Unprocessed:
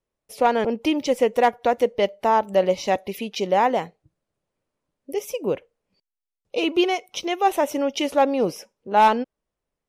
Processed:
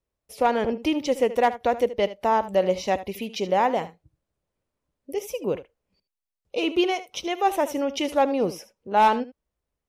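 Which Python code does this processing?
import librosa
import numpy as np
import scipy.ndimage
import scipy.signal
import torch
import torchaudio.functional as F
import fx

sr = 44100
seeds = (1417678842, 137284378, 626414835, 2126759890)

y = fx.peak_eq(x, sr, hz=61.0, db=10.5, octaves=1.1)
y = y + 10.0 ** (-15.0 / 20.0) * np.pad(y, (int(76 * sr / 1000.0), 0))[:len(y)]
y = F.gain(torch.from_numpy(y), -2.5).numpy()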